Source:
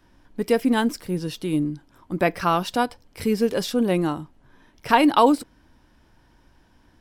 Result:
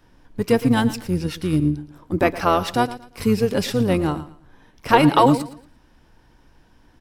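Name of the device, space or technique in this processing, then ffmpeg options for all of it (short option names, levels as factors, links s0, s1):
octave pedal: -filter_complex "[0:a]asettb=1/sr,asplit=3[s0][s1][s2];[s0]atrim=end=1.604[s3];[s1]atrim=start=1.6:end=2.22,asetpts=PTS-STARTPTS,afade=t=in:d=0.004:c=qsin,afade=t=out:st=0.616:d=0.004:c=qsin,adynamicequalizer=threshold=0.0112:dfrequency=380:dqfactor=0.96:tfrequency=380:tqfactor=0.96:attack=5:release=100:ratio=0.375:range=3:mode=boostabove:tftype=bell[s4];[s2]atrim=start=2.216[s5];[s3][s4]acrossfade=d=0.004:c1=hsin:c2=qsin[s6];[s6][s5]acrossfade=d=0.004:c1=qsin:c2=hsin,aecho=1:1:115|230|345:0.168|0.0453|0.0122,asplit=2[s7][s8];[s8]asetrate=22050,aresample=44100,atempo=2,volume=0.501[s9];[s7][s9]amix=inputs=2:normalize=0,volume=1.19"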